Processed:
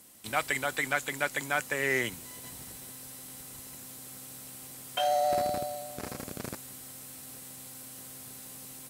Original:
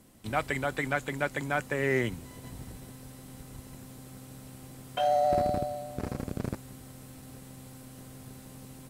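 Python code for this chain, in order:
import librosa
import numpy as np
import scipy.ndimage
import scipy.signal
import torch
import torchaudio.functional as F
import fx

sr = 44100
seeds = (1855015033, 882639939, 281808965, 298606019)

y = fx.tilt_eq(x, sr, slope=3.0)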